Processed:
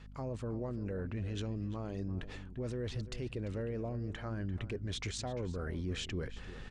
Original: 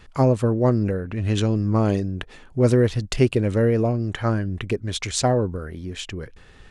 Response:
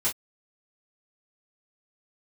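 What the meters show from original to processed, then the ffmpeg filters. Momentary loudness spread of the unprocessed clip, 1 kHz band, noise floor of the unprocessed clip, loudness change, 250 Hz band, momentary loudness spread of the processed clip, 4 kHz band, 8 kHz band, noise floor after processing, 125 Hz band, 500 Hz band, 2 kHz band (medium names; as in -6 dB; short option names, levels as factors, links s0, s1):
13 LU, -19.5 dB, -48 dBFS, -17.5 dB, -17.5 dB, 3 LU, -12.5 dB, -16.5 dB, -49 dBFS, -16.5 dB, -19.0 dB, -13.5 dB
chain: -filter_complex "[0:a]lowpass=7500,areverse,acompressor=threshold=0.0251:ratio=5,areverse,alimiter=level_in=2:limit=0.0631:level=0:latency=1:release=14,volume=0.501,aeval=exprs='val(0)+0.00355*(sin(2*PI*50*n/s)+sin(2*PI*2*50*n/s)/2+sin(2*PI*3*50*n/s)/3+sin(2*PI*4*50*n/s)/4+sin(2*PI*5*50*n/s)/5)':c=same,asplit=2[s0][s1];[s1]adelay=344,volume=0.224,highshelf=f=4000:g=-7.74[s2];[s0][s2]amix=inputs=2:normalize=0,volume=0.891"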